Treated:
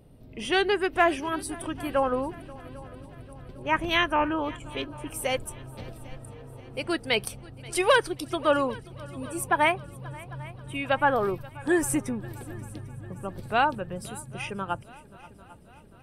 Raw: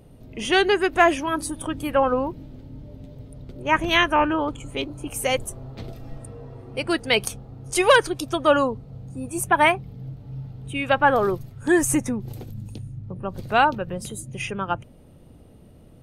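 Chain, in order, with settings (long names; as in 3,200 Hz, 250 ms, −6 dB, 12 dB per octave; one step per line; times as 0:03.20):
notch filter 6,600 Hz, Q 6.2
echo machine with several playback heads 266 ms, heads second and third, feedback 54%, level −22 dB
level −5 dB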